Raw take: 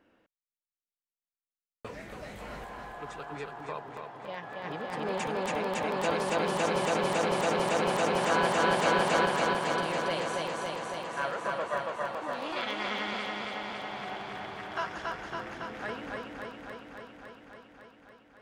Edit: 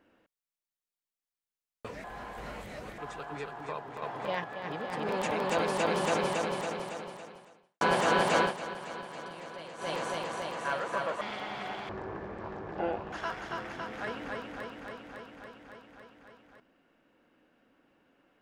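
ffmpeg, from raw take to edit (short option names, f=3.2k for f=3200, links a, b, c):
-filter_complex "[0:a]asplit=12[a][b][c][d][e][f][g][h][i][j][k][l];[a]atrim=end=2.042[m];[b]atrim=start=2.038:end=2.982,asetpts=PTS-STARTPTS,areverse[n];[c]atrim=start=2.978:end=4.022[o];[d]atrim=start=4.018:end=4.442,asetpts=PTS-STARTPTS,volume=6.5dB[p];[e]atrim=start=4.438:end=5.092[q];[f]atrim=start=5.608:end=8.33,asetpts=PTS-STARTPTS,afade=t=out:st=1.042:d=1.68:c=qua[r];[g]atrim=start=8.33:end=9.06,asetpts=PTS-STARTPTS,afade=t=in:d=0.004:c=hsin,afade=t=out:st=0.6:d=0.13:silence=0.223872[s];[h]atrim=start=9.06:end=10.3,asetpts=PTS-STARTPTS,volume=-13dB[t];[i]atrim=start=10.3:end=11.732,asetpts=PTS-STARTPTS,afade=t=in:d=0.13:silence=0.223872[u];[j]atrim=start=13.628:end=14.314[v];[k]atrim=start=14.31:end=14.94,asetpts=PTS-STARTPTS,asetrate=22491,aresample=44100,atrim=end_sample=54476,asetpts=PTS-STARTPTS[w];[l]atrim=start=14.936[x];[m][n]acrossfade=d=0.004:c1=hsin:c2=hsin[y];[y][o]acrossfade=d=0.004:c1=hsin:c2=hsin[z];[z][p]acrossfade=d=0.004:c1=hsin:c2=hsin[aa];[aa][q]acrossfade=d=0.004:c1=hsin:c2=hsin[ab];[r][s][t][u]concat=n=4:v=0:a=1[ac];[ab][ac]acrossfade=d=0.004:c1=hsin:c2=hsin[ad];[ad][v]acrossfade=d=0.004:c1=hsin:c2=hsin[ae];[ae][w]acrossfade=d=0.004:c1=hsin:c2=hsin[af];[af][x]acrossfade=d=0.004:c1=hsin:c2=hsin"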